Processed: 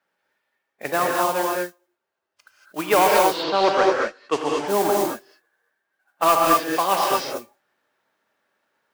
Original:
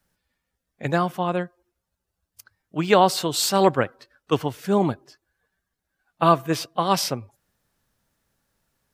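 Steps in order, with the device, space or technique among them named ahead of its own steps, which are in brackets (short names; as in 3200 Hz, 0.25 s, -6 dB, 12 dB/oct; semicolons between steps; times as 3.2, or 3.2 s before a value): carbon microphone (BPF 330–2600 Hz; soft clip -11 dBFS, distortion -14 dB; modulation noise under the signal 14 dB); 3.18–4.66 LPF 4100 Hz -> 8500 Hz 24 dB/oct; low shelf 370 Hz -6.5 dB; non-linear reverb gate 0.26 s rising, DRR -1.5 dB; gain +3.5 dB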